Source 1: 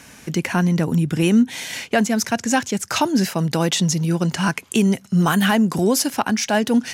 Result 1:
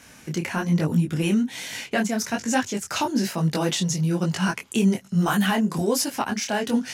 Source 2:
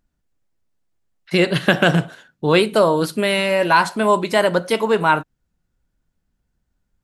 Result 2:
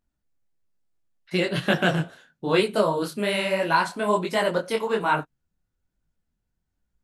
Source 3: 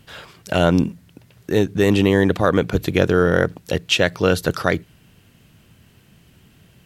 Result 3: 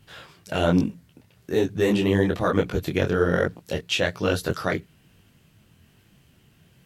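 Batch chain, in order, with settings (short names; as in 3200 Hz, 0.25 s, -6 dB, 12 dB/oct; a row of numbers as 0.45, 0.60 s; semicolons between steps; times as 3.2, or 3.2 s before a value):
detuned doubles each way 40 cents; match loudness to -24 LUFS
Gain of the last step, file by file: -1.0, -3.0, -2.0 dB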